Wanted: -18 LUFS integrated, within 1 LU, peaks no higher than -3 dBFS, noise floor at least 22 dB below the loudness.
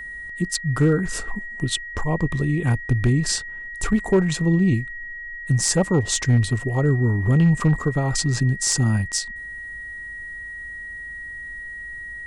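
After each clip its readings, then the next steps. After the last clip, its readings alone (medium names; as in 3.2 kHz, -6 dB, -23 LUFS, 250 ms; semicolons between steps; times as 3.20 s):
clipped samples 0.3%; clipping level -10.5 dBFS; steady tone 1.9 kHz; tone level -32 dBFS; loudness -21.5 LUFS; peak level -10.5 dBFS; loudness target -18.0 LUFS
-> clip repair -10.5 dBFS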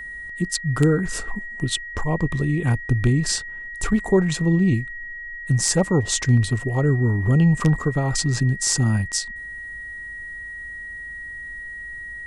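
clipped samples 0.0%; steady tone 1.9 kHz; tone level -32 dBFS
-> band-stop 1.9 kHz, Q 30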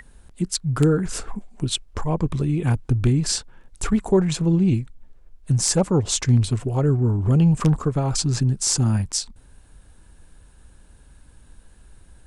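steady tone not found; loudness -21.5 LUFS; peak level -4.5 dBFS; loudness target -18.0 LUFS
-> trim +3.5 dB; peak limiter -3 dBFS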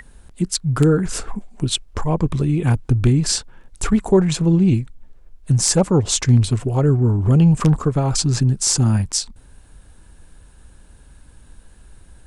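loudness -18.0 LUFS; peak level -3.0 dBFS; noise floor -47 dBFS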